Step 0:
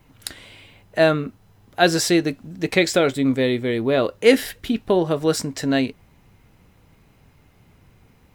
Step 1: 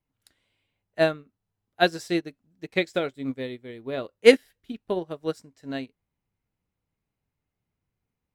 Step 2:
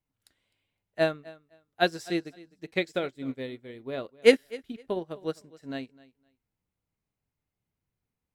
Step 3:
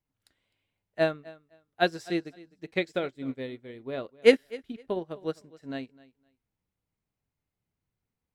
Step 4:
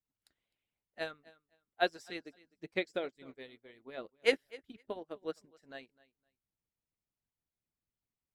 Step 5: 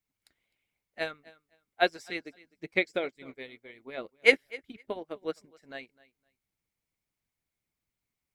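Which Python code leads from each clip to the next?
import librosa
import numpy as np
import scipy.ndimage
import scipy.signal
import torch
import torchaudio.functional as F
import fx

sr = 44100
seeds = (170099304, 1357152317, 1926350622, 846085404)

y1 = fx.upward_expand(x, sr, threshold_db=-29.0, expansion=2.5)
y1 = y1 * librosa.db_to_amplitude(1.5)
y2 = fx.echo_feedback(y1, sr, ms=256, feedback_pct=19, wet_db=-21)
y2 = y2 * librosa.db_to_amplitude(-3.5)
y3 = fx.high_shelf(y2, sr, hz=5600.0, db=-6.5)
y4 = fx.hpss(y3, sr, part='harmonic', gain_db=-17)
y4 = y4 * librosa.db_to_amplitude(-5.0)
y5 = fx.peak_eq(y4, sr, hz=2200.0, db=9.0, octaves=0.24)
y5 = y5 * librosa.db_to_amplitude(5.0)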